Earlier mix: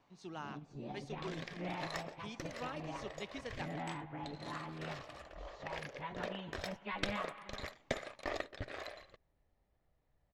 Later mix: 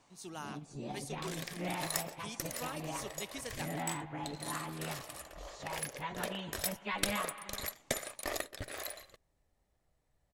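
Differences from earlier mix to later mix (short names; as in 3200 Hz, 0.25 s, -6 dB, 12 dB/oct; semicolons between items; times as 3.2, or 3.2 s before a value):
first sound +3.0 dB; master: remove air absorption 190 m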